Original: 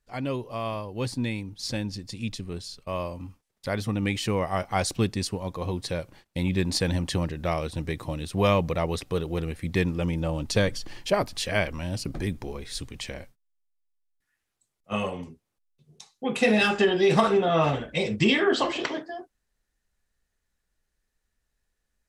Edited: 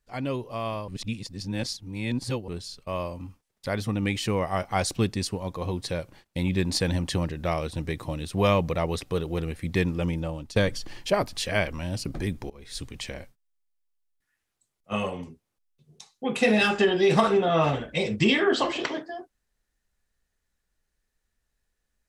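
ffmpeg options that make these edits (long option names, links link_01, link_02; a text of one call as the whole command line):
ffmpeg -i in.wav -filter_complex "[0:a]asplit=5[link_01][link_02][link_03][link_04][link_05];[link_01]atrim=end=0.882[link_06];[link_02]atrim=start=0.878:end=2.482,asetpts=PTS-STARTPTS,areverse[link_07];[link_03]atrim=start=2.478:end=10.56,asetpts=PTS-STARTPTS,afade=type=out:start_time=7.612:duration=0.47:silence=0.177828[link_08];[link_04]atrim=start=10.56:end=12.5,asetpts=PTS-STARTPTS,afade=type=in:duration=0.004:curve=hsin:silence=0.177828,afade=type=out:start_time=1.936:duration=0.004:curve=hsin:silence=0.0794328[link_09];[link_05]atrim=start=12.5,asetpts=PTS-STARTPTS,afade=type=in:duration=0.33:silence=0.0794328[link_10];[link_06][link_07]acrossfade=duration=0.004:curve1=hsin:curve2=hsin[link_11];[link_08][link_09][link_10]concat=n=3:v=0:a=1[link_12];[link_11][link_12]acrossfade=duration=0.004:curve1=hsin:curve2=hsin" out.wav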